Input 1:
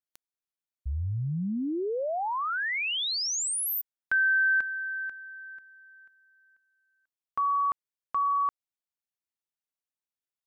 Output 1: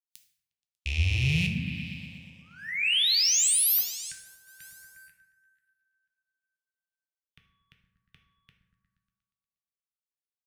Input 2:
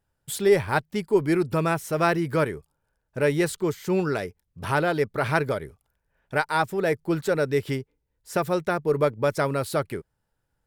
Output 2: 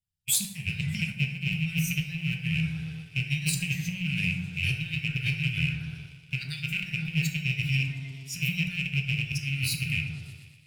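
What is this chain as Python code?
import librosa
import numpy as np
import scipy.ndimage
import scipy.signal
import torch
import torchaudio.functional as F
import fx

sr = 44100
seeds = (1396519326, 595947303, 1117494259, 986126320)

p1 = fx.rattle_buzz(x, sr, strikes_db=-43.0, level_db=-20.0)
p2 = fx.low_shelf(p1, sr, hz=76.0, db=-12.0)
p3 = p2 + fx.echo_opening(p2, sr, ms=119, hz=750, octaves=1, feedback_pct=70, wet_db=-6, dry=0)
p4 = fx.noise_reduce_blind(p3, sr, reduce_db=12)
p5 = fx.over_compress(p4, sr, threshold_db=-27.0, ratio=-0.5)
p6 = scipy.signal.sosfilt(scipy.signal.cheby2(4, 60, [390.0, 1100.0], 'bandstop', fs=sr, output='sos'), p5)
p7 = fx.leveller(p6, sr, passes=1)
p8 = fx.rev_plate(p7, sr, seeds[0], rt60_s=0.91, hf_ratio=0.55, predelay_ms=0, drr_db=3.0)
y = F.gain(torch.from_numpy(p8), 1.5).numpy()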